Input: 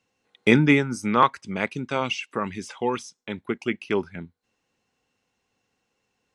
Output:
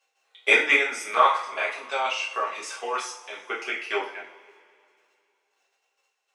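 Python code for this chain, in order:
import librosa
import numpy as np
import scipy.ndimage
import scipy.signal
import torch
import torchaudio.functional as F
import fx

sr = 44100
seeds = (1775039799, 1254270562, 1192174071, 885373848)

y = scipy.signal.sosfilt(scipy.signal.butter(4, 560.0, 'highpass', fs=sr, output='sos'), x)
y = fx.level_steps(y, sr, step_db=11)
y = fx.rev_double_slope(y, sr, seeds[0], early_s=0.43, late_s=2.5, knee_db=-21, drr_db=-7.0)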